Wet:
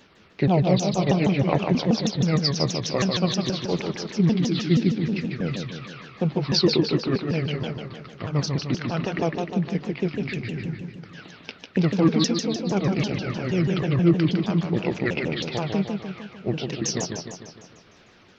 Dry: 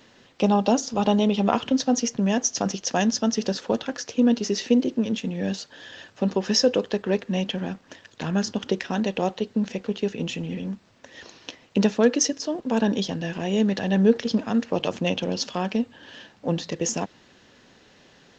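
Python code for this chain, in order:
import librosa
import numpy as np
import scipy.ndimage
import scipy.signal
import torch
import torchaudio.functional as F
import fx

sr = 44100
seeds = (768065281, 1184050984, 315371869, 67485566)

y = fx.pitch_ramps(x, sr, semitones=-8.0, every_ms=159)
y = fx.echo_warbled(y, sr, ms=151, feedback_pct=55, rate_hz=2.8, cents=155, wet_db=-5.0)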